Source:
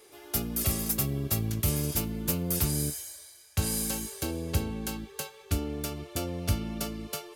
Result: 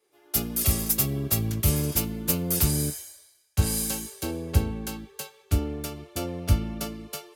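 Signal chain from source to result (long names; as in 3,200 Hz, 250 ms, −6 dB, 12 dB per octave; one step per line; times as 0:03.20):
multiband upward and downward expander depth 70%
level +3 dB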